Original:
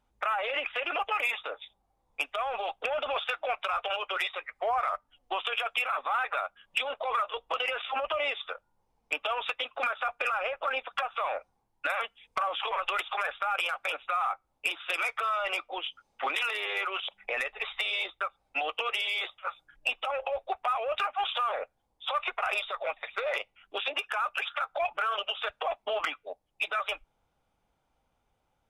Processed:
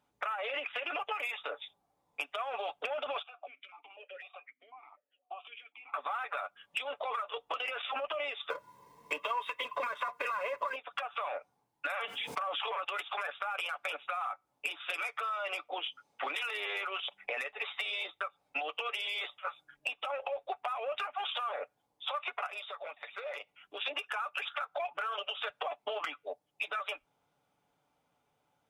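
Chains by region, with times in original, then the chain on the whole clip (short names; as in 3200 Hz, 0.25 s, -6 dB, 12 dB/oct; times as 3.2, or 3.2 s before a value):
3.22–5.94 compressor, threshold -34 dBFS + vowel sequencer 4 Hz
8.5–10.76 G.711 law mismatch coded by mu + comb 1.9 ms, depth 76% + small resonant body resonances 260/1000/1900 Hz, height 16 dB, ringing for 30 ms
11.87–12.84 HPF 140 Hz + fast leveller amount 70%
22.46–23.81 de-hum 60.06 Hz, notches 3 + compressor 2:1, threshold -46 dBFS
whole clip: HPF 130 Hz 12 dB/oct; comb 6.9 ms, depth 38%; compressor, threshold -33 dBFS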